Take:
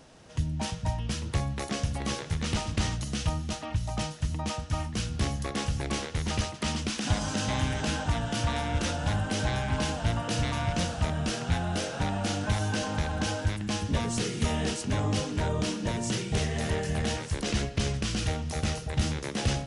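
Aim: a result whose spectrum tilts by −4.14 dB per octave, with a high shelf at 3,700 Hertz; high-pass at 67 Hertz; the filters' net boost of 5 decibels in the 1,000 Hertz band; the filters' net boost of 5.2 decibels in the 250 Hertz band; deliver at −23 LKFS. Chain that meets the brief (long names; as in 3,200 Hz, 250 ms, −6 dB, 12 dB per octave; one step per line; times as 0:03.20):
high-pass filter 67 Hz
parametric band 250 Hz +6.5 dB
parametric band 1,000 Hz +5.5 dB
high-shelf EQ 3,700 Hz +8 dB
level +4 dB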